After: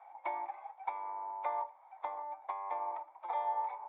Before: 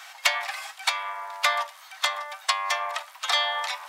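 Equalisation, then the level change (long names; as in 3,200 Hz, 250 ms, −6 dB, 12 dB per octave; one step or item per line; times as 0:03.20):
dynamic equaliser 680 Hz, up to −6 dB, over −45 dBFS, Q 3.1
formant resonators in series u
+14.0 dB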